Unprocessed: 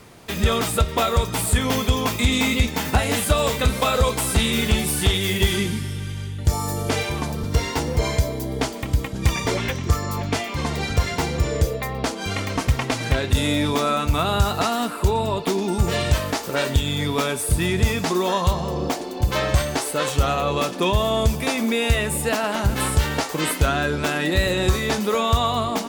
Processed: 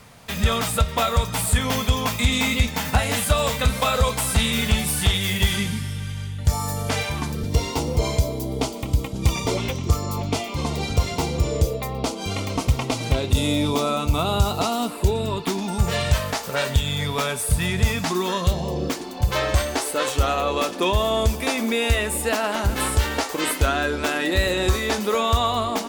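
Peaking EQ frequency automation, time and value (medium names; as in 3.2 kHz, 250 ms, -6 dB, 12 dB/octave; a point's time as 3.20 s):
peaking EQ -14.5 dB 0.44 oct
7.10 s 350 Hz
7.59 s 1.7 kHz
14.86 s 1.7 kHz
15.75 s 320 Hz
17.90 s 320 Hz
18.70 s 1.4 kHz
19.51 s 150 Hz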